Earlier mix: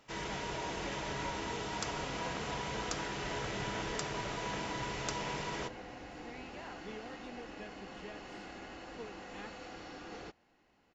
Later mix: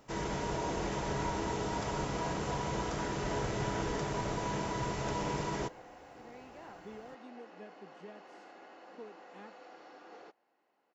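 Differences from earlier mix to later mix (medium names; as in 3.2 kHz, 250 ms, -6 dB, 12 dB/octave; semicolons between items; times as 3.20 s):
first sound +6.5 dB; second sound: add band-pass 490–4400 Hz; master: add peaking EQ 2.9 kHz -10 dB 2.2 oct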